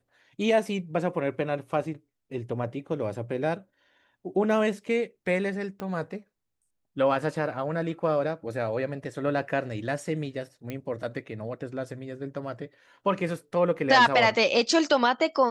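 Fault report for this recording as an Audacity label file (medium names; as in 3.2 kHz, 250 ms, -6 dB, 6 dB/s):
5.800000	5.800000	pop -22 dBFS
10.700000	10.700000	pop -21 dBFS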